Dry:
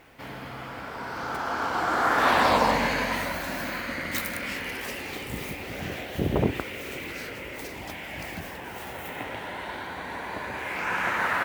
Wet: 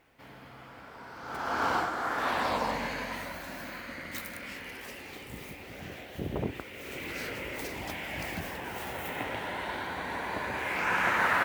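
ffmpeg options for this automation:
-af "volume=10dB,afade=t=in:st=1.22:d=0.49:silence=0.251189,afade=t=out:st=1.71:d=0.2:silence=0.316228,afade=t=in:st=6.71:d=0.55:silence=0.354813"

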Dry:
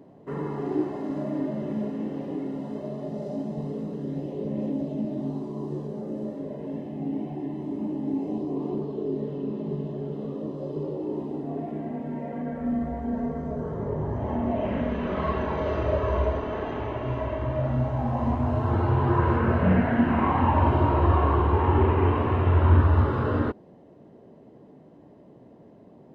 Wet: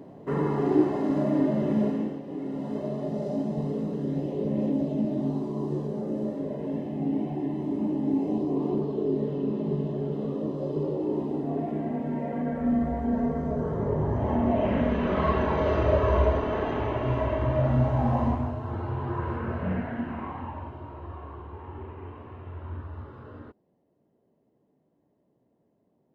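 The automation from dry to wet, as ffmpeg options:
-af "volume=14dB,afade=t=out:st=1.89:d=0.33:silence=0.266073,afade=t=in:st=2.22:d=0.55:silence=0.354813,afade=t=out:st=18.13:d=0.43:silence=0.281838,afade=t=out:st=19.75:d=0.98:silence=0.281838"

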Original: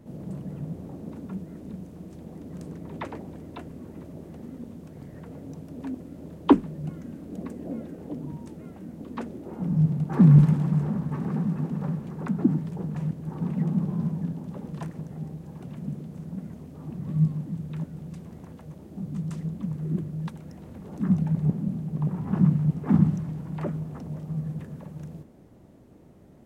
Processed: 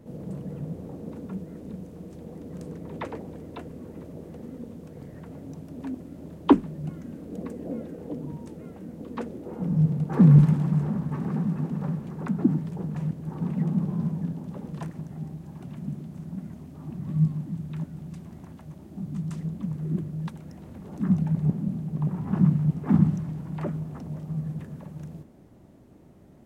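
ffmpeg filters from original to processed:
-af "asetnsamples=n=441:p=0,asendcmd='5.13 equalizer g -1;7.11 equalizer g 7;10.38 equalizer g -1;14.9 equalizer g -11.5;19.36 equalizer g -3.5',equalizer=f=480:t=o:w=0.24:g=7.5"

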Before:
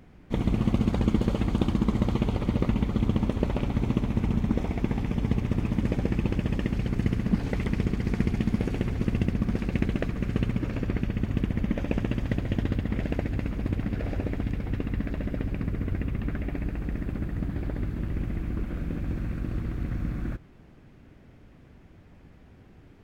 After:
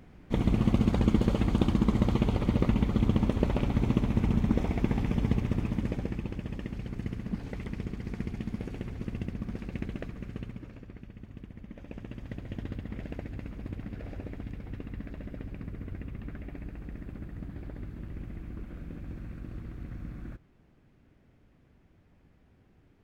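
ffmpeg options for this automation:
-af "volume=8dB,afade=t=out:st=5.16:d=1.12:silence=0.354813,afade=t=out:st=10:d=0.87:silence=0.354813,afade=t=in:st=11.68:d=0.99:silence=0.375837"

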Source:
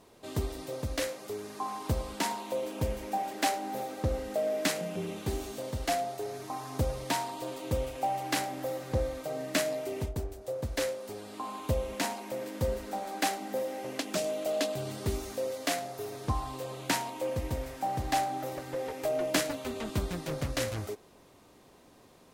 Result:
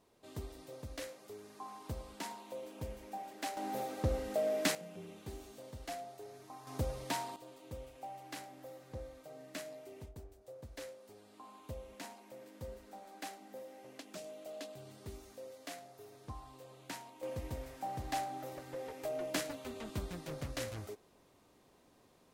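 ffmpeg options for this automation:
-af "asetnsamples=n=441:p=0,asendcmd='3.57 volume volume -3dB;4.75 volume volume -13.5dB;6.67 volume volume -6.5dB;7.36 volume volume -16dB;17.23 volume volume -8.5dB',volume=-12dB"

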